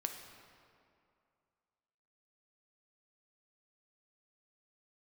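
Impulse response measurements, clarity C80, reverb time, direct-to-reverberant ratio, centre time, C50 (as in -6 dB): 7.0 dB, 2.4 s, 4.0 dB, 45 ms, 6.0 dB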